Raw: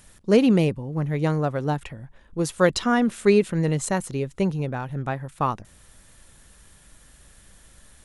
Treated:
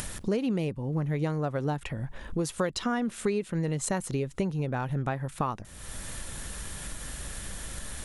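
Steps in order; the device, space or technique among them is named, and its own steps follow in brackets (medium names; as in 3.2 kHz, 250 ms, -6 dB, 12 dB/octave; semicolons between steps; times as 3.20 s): upward and downward compression (upward compressor, threshold -24 dBFS; compression 8:1, threshold -25 dBFS, peak gain reduction 13.5 dB)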